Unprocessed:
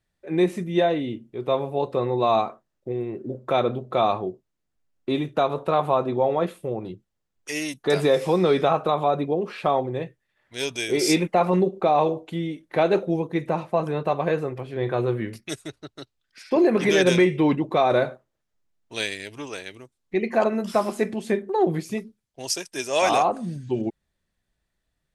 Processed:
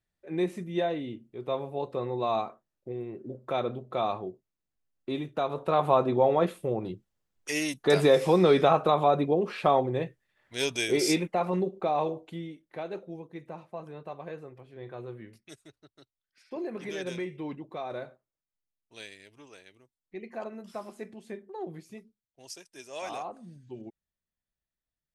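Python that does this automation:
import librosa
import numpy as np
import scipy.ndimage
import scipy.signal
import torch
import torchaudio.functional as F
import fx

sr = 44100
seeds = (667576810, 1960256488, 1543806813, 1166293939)

y = fx.gain(x, sr, db=fx.line((5.4, -8.0), (5.93, -1.0), (10.85, -1.0), (11.28, -8.0), (12.27, -8.0), (12.83, -17.0)))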